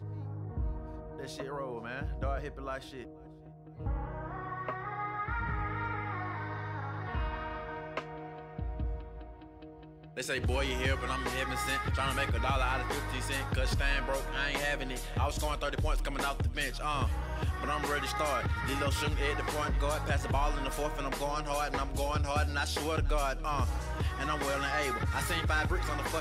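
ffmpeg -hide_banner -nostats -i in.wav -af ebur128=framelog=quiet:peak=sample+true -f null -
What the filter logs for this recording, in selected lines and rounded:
Integrated loudness:
  I:         -33.6 LUFS
  Threshold: -44.0 LUFS
Loudness range:
  LRA:         7.6 LU
  Threshold: -54.0 LUFS
  LRA low:   -39.6 LUFS
  LRA high:  -32.0 LUFS
Sample peak:
  Peak:      -16.5 dBFS
True peak:
  Peak:      -16.5 dBFS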